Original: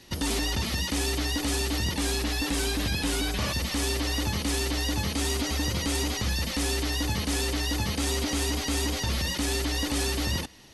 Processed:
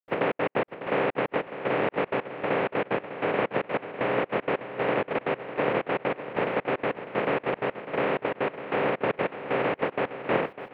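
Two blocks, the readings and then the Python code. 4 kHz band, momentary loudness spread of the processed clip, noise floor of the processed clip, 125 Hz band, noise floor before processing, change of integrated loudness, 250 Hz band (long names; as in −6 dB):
−14.5 dB, 4 LU, −53 dBFS, −9.5 dB, −33 dBFS, −1.0 dB, −2.5 dB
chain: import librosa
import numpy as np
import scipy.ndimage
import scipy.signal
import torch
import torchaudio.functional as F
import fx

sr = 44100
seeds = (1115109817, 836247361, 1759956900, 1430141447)

y = fx.spec_flatten(x, sr, power=0.14)
y = scipy.signal.sosfilt(scipy.signal.cheby1(3, 1.0, [130.0, 2500.0], 'bandpass', fs=sr, output='sos'), y)
y = fx.peak_eq(y, sr, hz=480.0, db=11.0, octaves=1.0)
y = fx.rider(y, sr, range_db=10, speed_s=0.5)
y = fx.dmg_noise_colour(y, sr, seeds[0], colour='white', level_db=-57.0)
y = fx.step_gate(y, sr, bpm=191, pattern='.xxx.x.x..', floor_db=-60.0, edge_ms=4.5)
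y = fx.air_absorb(y, sr, metres=490.0)
y = fx.echo_feedback(y, sr, ms=601, feedback_pct=39, wet_db=-12.0)
y = y * librosa.db_to_amplitude(8.0)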